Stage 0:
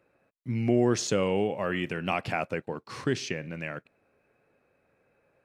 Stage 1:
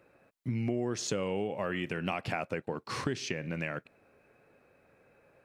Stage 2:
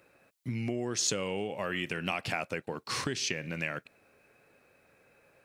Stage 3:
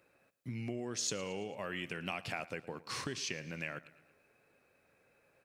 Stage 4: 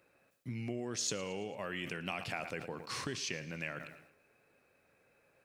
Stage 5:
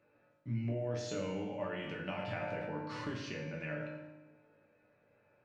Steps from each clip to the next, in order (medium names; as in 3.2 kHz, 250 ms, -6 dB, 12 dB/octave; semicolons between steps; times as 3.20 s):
compression 4:1, threshold -36 dBFS, peak gain reduction 14.5 dB; trim +5 dB
treble shelf 2.2 kHz +11 dB; trim -2 dB
feedback delay 112 ms, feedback 53%, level -19 dB; trim -6.5 dB
decay stretcher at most 74 dB/s
tape spacing loss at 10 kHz 28 dB; chord resonator G2 minor, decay 0.22 s; reverberation RT60 1.1 s, pre-delay 3 ms, DRR 0 dB; trim +11 dB